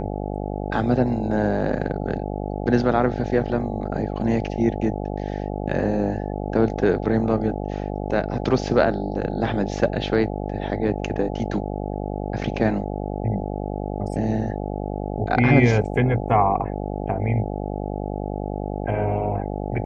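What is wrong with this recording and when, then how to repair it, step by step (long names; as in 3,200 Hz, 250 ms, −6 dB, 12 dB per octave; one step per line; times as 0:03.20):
mains buzz 50 Hz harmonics 17 −28 dBFS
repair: hum removal 50 Hz, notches 17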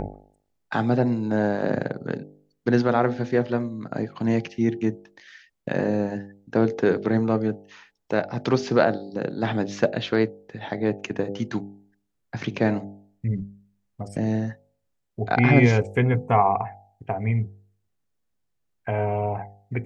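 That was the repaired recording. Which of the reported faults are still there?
none of them is left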